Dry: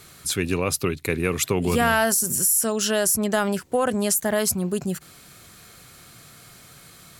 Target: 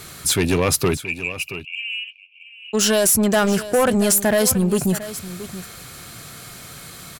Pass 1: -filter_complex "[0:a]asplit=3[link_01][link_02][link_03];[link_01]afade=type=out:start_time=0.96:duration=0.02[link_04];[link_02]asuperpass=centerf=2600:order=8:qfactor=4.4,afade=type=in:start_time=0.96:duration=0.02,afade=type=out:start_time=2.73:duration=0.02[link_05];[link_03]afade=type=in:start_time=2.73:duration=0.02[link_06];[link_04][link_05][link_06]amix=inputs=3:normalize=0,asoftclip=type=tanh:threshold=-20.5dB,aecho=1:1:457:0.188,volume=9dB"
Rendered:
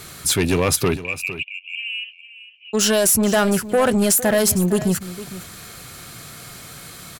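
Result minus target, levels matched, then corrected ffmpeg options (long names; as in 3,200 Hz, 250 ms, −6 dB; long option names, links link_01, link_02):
echo 220 ms early
-filter_complex "[0:a]asplit=3[link_01][link_02][link_03];[link_01]afade=type=out:start_time=0.96:duration=0.02[link_04];[link_02]asuperpass=centerf=2600:order=8:qfactor=4.4,afade=type=in:start_time=0.96:duration=0.02,afade=type=out:start_time=2.73:duration=0.02[link_05];[link_03]afade=type=in:start_time=2.73:duration=0.02[link_06];[link_04][link_05][link_06]amix=inputs=3:normalize=0,asoftclip=type=tanh:threshold=-20.5dB,aecho=1:1:677:0.188,volume=9dB"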